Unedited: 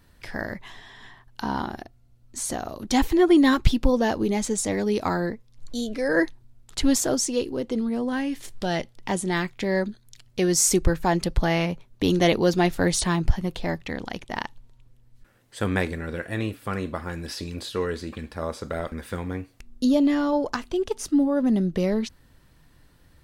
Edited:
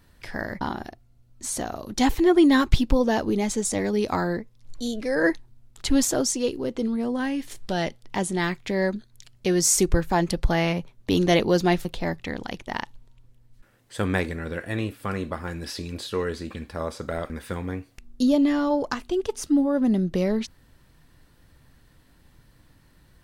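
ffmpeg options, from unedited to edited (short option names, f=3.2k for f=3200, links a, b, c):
-filter_complex "[0:a]asplit=3[a][b][c];[a]atrim=end=0.612[d];[b]atrim=start=1.538:end=12.782[e];[c]atrim=start=13.468[f];[d][e]acrossfade=d=0.004:c1=hsin:c2=hsin[g];[g][f]acrossfade=d=0.004:c1=hsin:c2=hsin"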